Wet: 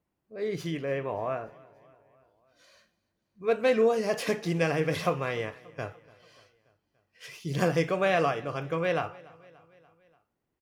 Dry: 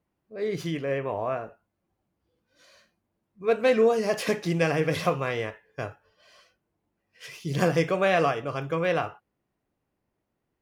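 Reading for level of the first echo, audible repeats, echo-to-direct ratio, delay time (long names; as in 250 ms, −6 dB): −23.0 dB, 3, −21.0 dB, 290 ms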